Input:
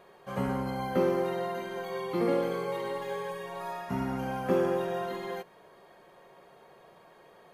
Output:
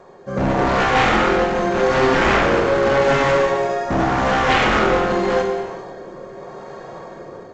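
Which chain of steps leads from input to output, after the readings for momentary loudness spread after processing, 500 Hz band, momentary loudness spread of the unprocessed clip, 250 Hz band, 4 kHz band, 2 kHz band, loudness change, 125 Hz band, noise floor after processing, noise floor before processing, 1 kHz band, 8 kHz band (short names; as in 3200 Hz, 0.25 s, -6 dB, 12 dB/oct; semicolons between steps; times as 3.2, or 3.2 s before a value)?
20 LU, +13.5 dB, 10 LU, +11.5 dB, +20.0 dB, +22.0 dB, +14.5 dB, +13.0 dB, -38 dBFS, -57 dBFS, +17.5 dB, +18.0 dB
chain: bell 2900 Hz -13.5 dB 1.1 oct; in parallel at 0 dB: limiter -27 dBFS, peak gain reduction 11.5 dB; on the sum: AGC gain up to 8 dB; rotary speaker horn 0.85 Hz; wavefolder -22 dBFS; non-linear reverb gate 0.46 s falling, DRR 1 dB; gain +8.5 dB; G.722 64 kbps 16000 Hz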